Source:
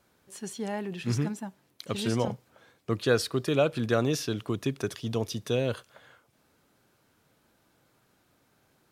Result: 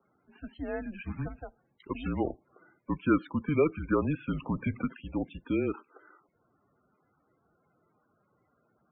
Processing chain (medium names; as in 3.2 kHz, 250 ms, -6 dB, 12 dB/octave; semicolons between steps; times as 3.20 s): mistuned SSB -160 Hz 280–2900 Hz; 4.29–4.85 s: power-law waveshaper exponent 0.7; loudest bins only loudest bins 32